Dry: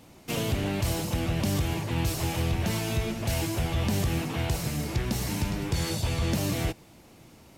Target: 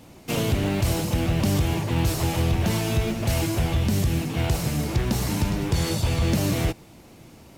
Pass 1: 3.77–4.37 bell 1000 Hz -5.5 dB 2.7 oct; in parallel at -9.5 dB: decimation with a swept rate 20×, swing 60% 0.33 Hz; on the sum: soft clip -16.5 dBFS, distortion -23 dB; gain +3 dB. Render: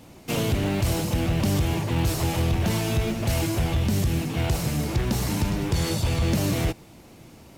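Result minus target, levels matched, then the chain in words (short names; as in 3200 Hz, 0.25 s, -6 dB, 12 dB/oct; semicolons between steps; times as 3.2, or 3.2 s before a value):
soft clip: distortion +12 dB
3.77–4.37 bell 1000 Hz -5.5 dB 2.7 oct; in parallel at -9.5 dB: decimation with a swept rate 20×, swing 60% 0.33 Hz; on the sum: soft clip -10 dBFS, distortion -34 dB; gain +3 dB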